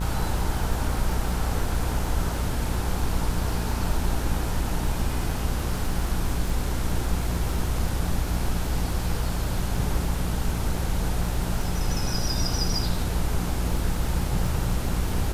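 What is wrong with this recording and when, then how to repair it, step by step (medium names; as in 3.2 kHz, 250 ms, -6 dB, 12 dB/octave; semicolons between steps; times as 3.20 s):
buzz 60 Hz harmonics 27 -29 dBFS
crackle 38 per s -32 dBFS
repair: de-click; de-hum 60 Hz, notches 27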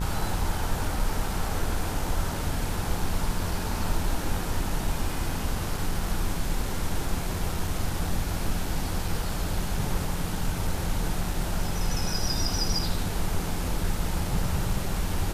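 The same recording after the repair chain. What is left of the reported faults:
nothing left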